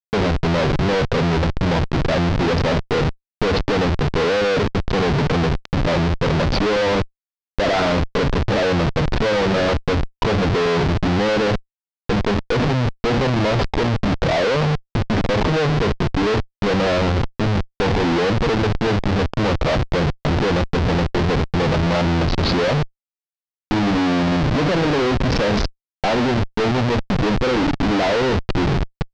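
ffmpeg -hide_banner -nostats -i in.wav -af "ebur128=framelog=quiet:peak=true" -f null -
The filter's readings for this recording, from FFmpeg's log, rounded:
Integrated loudness:
  I:         -19.5 LUFS
  Threshold: -29.6 LUFS
Loudness range:
  LRA:         0.9 LU
  Threshold: -39.7 LUFS
  LRA low:   -20.1 LUFS
  LRA high:  -19.2 LUFS
True peak:
  Peak:      -10.3 dBFS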